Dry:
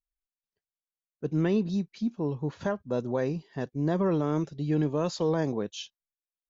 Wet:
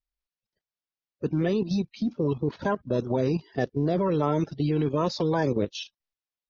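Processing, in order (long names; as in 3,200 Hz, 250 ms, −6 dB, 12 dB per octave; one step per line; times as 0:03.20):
spectral magnitudes quantised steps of 30 dB
Butterworth low-pass 5,800 Hz 48 dB per octave
output level in coarse steps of 11 dB
level +9 dB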